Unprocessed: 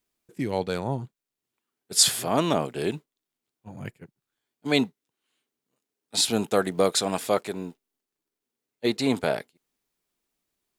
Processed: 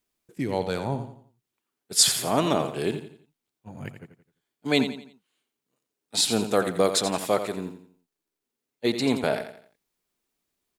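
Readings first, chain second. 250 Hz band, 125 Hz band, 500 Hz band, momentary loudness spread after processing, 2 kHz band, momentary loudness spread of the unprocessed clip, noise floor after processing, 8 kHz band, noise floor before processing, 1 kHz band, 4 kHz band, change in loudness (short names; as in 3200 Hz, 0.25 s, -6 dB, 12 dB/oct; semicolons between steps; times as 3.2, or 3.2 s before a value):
+0.5 dB, 0.0 dB, +0.5 dB, 20 LU, +0.5 dB, 19 LU, under -85 dBFS, +0.5 dB, under -85 dBFS, +0.5 dB, +0.5 dB, +0.5 dB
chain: feedback echo 86 ms, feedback 37%, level -10 dB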